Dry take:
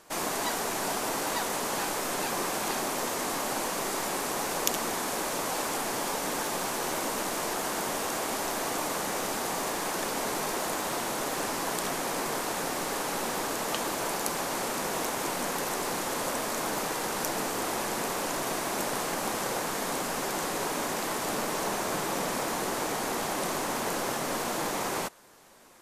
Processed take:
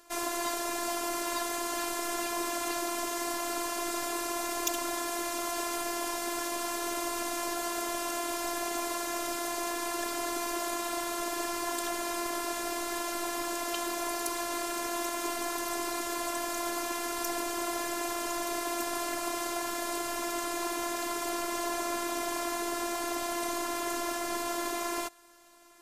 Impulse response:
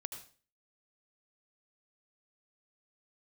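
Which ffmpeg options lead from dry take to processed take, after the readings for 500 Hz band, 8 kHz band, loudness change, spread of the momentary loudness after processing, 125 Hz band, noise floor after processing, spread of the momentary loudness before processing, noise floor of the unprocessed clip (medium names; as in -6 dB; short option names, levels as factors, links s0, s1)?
-2.5 dB, -2.5 dB, -2.5 dB, 1 LU, -15.5 dB, -35 dBFS, 1 LU, -33 dBFS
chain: -af "afftfilt=real='hypot(re,im)*cos(PI*b)':imag='0':win_size=512:overlap=0.75,acontrast=90,volume=0.501"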